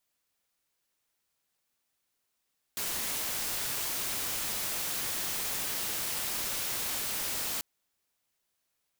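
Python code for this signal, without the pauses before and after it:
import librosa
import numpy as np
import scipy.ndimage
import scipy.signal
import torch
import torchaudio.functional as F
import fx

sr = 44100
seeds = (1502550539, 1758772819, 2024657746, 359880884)

y = fx.noise_colour(sr, seeds[0], length_s=4.84, colour='white', level_db=-33.5)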